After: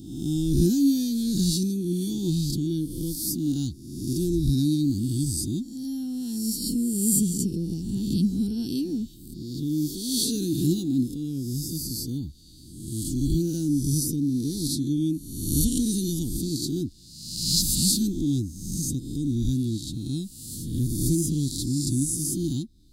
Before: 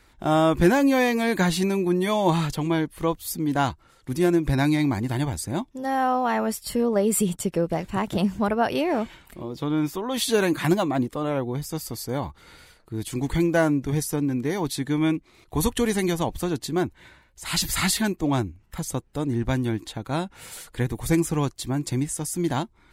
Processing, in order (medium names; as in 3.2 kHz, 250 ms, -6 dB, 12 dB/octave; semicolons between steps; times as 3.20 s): reverse spectral sustain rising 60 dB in 1.00 s; elliptic band-stop 290–4300 Hz, stop band 40 dB